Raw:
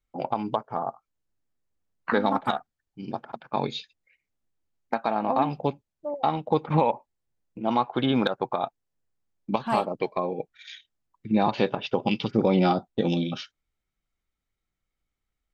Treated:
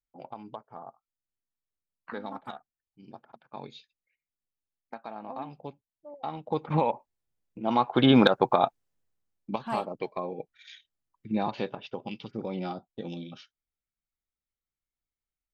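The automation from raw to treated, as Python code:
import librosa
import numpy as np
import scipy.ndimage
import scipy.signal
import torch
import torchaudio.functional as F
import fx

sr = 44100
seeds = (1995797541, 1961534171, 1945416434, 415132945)

y = fx.gain(x, sr, db=fx.line((6.06, -14.5), (6.71, -3.5), (7.61, -3.5), (8.09, 5.0), (8.63, 5.0), (9.51, -6.0), (11.36, -6.0), (12.11, -13.0)))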